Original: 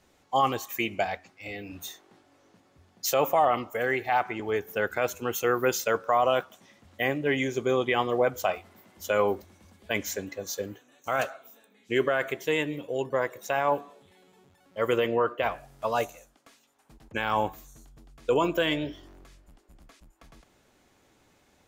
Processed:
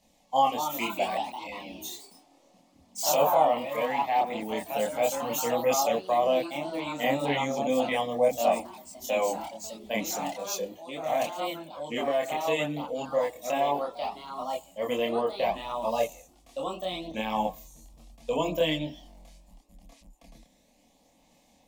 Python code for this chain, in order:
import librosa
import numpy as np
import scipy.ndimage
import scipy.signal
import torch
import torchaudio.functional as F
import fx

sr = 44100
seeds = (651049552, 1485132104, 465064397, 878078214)

y = fx.fixed_phaser(x, sr, hz=380.0, stages=6)
y = fx.echo_pitch(y, sr, ms=272, semitones=2, count=3, db_per_echo=-6.0)
y = fx.chorus_voices(y, sr, voices=2, hz=0.35, base_ms=27, depth_ms=1.5, mix_pct=50)
y = y * librosa.db_to_amplitude(5.0)